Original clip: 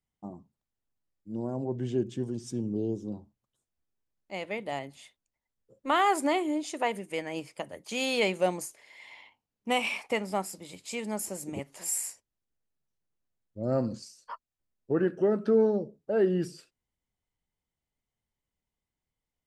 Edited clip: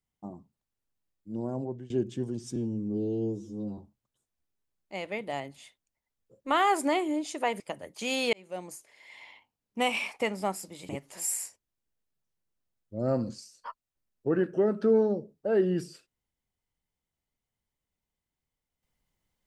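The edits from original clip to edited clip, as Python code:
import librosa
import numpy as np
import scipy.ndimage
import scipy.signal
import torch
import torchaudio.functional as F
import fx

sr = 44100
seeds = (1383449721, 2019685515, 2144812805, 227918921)

y = fx.edit(x, sr, fx.fade_out_to(start_s=1.59, length_s=0.31, floor_db=-22.0),
    fx.stretch_span(start_s=2.56, length_s=0.61, factor=2.0),
    fx.cut(start_s=6.99, length_s=0.51),
    fx.fade_in_span(start_s=8.23, length_s=0.83),
    fx.cut(start_s=10.79, length_s=0.74), tone=tone)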